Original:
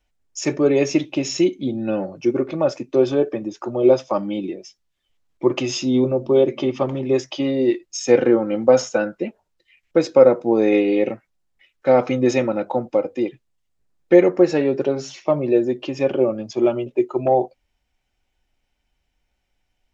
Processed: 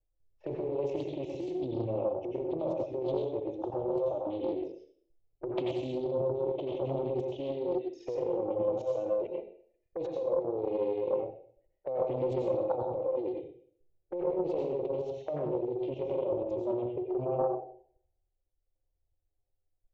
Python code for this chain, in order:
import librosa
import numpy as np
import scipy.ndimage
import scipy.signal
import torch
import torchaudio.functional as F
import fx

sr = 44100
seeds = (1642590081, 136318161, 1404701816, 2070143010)

y = fx.over_compress(x, sr, threshold_db=-20.0, ratio=-1.0)
y = fx.high_shelf_res(y, sr, hz=1600.0, db=-10.5, q=1.5)
y = fx.fixed_phaser(y, sr, hz=500.0, stages=4)
y = fx.env_flanger(y, sr, rest_ms=10.1, full_db=-28.5)
y = fx.env_lowpass(y, sr, base_hz=370.0, full_db=-30.5)
y = fx.level_steps(y, sr, step_db=16)
y = scipy.signal.sosfilt(scipy.signal.butter(4, 3800.0, 'lowpass', fs=sr, output='sos'), y)
y = fx.peak_eq(y, sr, hz=250.0, db=-7.0, octaves=0.94)
y = fx.rev_plate(y, sr, seeds[0], rt60_s=0.58, hf_ratio=1.0, predelay_ms=75, drr_db=-1.0)
y = fx.doppler_dist(y, sr, depth_ms=0.4)